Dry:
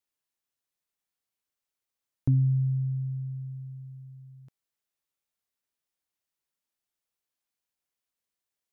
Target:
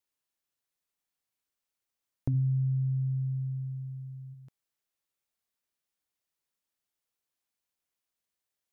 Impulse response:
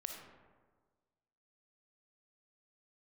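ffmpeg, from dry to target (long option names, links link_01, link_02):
-filter_complex "[0:a]asplit=3[link_01][link_02][link_03];[link_01]afade=type=out:start_time=2.33:duration=0.02[link_04];[link_02]equalizer=frequency=120:width=7.6:gain=12.5,afade=type=in:start_time=2.33:duration=0.02,afade=type=out:start_time=4.33:duration=0.02[link_05];[link_03]afade=type=in:start_time=4.33:duration=0.02[link_06];[link_04][link_05][link_06]amix=inputs=3:normalize=0,acompressor=threshold=-28dB:ratio=3"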